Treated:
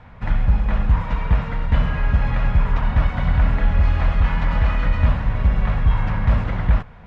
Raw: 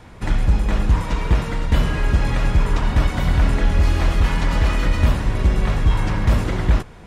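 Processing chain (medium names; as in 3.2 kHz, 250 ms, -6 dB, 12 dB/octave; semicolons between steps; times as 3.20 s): low-pass 2.3 kHz 12 dB/octave; peaking EQ 350 Hz -14.5 dB 0.61 oct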